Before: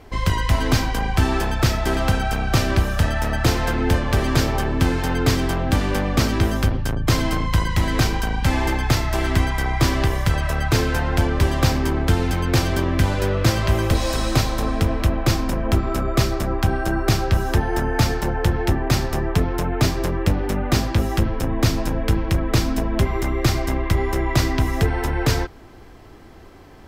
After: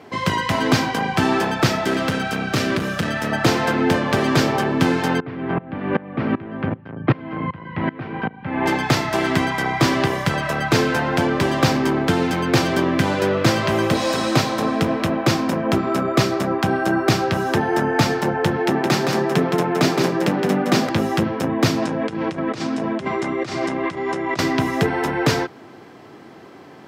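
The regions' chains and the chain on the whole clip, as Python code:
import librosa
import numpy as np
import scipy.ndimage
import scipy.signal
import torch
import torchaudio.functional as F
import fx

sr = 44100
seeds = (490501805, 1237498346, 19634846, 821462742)

y = fx.chain(x, sr, fx.overload_stage(gain_db=15.5),
    fx.peak_eq(hz=820.0, db=-7.0, octaves=0.78), at=(1.85, 3.32))
y = fx.chain(y, sr, fx.lowpass(hz=2500.0, slope=24),
    fx.low_shelf(hz=380.0, db=4.0),
    fx.tremolo_decay(direction='swelling', hz=2.6, depth_db=23), at=(5.2, 8.66))
y = fx.chain(y, sr, fx.highpass(hz=140.0, slope=24),
    fx.echo_single(ms=167, db=-4.5), at=(18.57, 20.89))
y = fx.chain(y, sr, fx.lowpass(hz=9100.0, slope=24),
    fx.low_shelf(hz=61.0, db=-10.5),
    fx.over_compress(threshold_db=-27.0, ratio=-1.0), at=(21.82, 24.39))
y = scipy.signal.sosfilt(scipy.signal.butter(4, 140.0, 'highpass', fs=sr, output='sos'), y)
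y = fx.high_shelf(y, sr, hz=7400.0, db=-10.5)
y = y * 10.0 ** (4.5 / 20.0)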